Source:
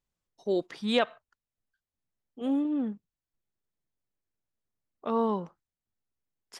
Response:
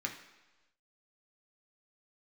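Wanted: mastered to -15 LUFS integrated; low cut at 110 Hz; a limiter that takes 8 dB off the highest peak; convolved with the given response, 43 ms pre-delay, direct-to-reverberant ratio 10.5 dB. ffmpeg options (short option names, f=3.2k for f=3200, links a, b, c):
-filter_complex "[0:a]highpass=110,alimiter=limit=-20dB:level=0:latency=1,asplit=2[a][b];[1:a]atrim=start_sample=2205,adelay=43[c];[b][c]afir=irnorm=-1:irlink=0,volume=-13dB[d];[a][d]amix=inputs=2:normalize=0,volume=16.5dB"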